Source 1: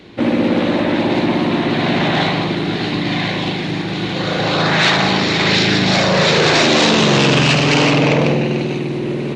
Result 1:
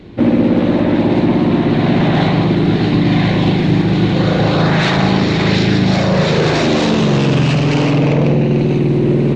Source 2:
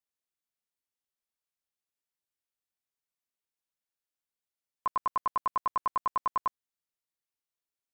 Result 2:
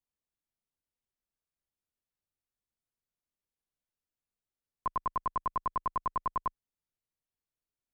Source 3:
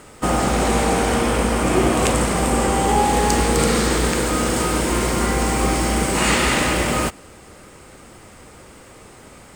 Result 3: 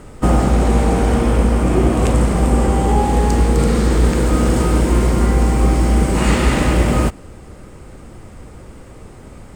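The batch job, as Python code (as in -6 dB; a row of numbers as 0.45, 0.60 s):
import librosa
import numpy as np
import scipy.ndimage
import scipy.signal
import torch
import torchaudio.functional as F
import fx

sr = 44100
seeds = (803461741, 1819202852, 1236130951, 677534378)

y = fx.tilt_eq(x, sr, slope=-3.0)
y = fx.rider(y, sr, range_db=10, speed_s=0.5)
y = fx.high_shelf(y, sr, hz=5800.0, db=7.0)
y = y * 10.0 ** (-2.0 / 20.0)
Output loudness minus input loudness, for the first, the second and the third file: +1.5, -2.5, +3.0 LU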